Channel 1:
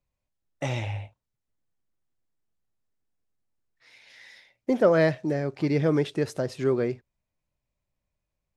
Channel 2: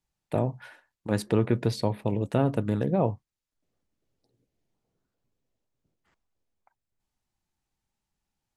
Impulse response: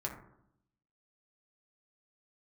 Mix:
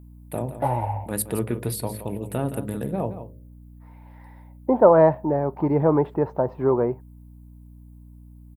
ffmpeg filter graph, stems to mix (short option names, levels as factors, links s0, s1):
-filter_complex "[0:a]lowpass=f=920:t=q:w=6.4,volume=1.26[s0];[1:a]bandreject=f=53.15:t=h:w=4,bandreject=f=106.3:t=h:w=4,bandreject=f=159.45:t=h:w=4,bandreject=f=212.6:t=h:w=4,bandreject=f=265.75:t=h:w=4,bandreject=f=318.9:t=h:w=4,bandreject=f=372.05:t=h:w=4,bandreject=f=425.2:t=h:w=4,bandreject=f=478.35:t=h:w=4,bandreject=f=531.5:t=h:w=4,bandreject=f=584.65:t=h:w=4,bandreject=f=637.8:t=h:w=4,aexciter=amount=13.5:drive=5:freq=8900,volume=0.794,asplit=2[s1][s2];[s2]volume=0.266,aecho=0:1:169:1[s3];[s0][s1][s3]amix=inputs=3:normalize=0,aeval=exprs='val(0)+0.00631*(sin(2*PI*60*n/s)+sin(2*PI*2*60*n/s)/2+sin(2*PI*3*60*n/s)/3+sin(2*PI*4*60*n/s)/4+sin(2*PI*5*60*n/s)/5)':c=same"